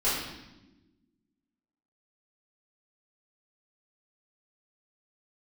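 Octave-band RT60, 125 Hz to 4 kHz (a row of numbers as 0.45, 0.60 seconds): 1.6, 1.8, 1.3, 0.90, 0.90, 0.90 seconds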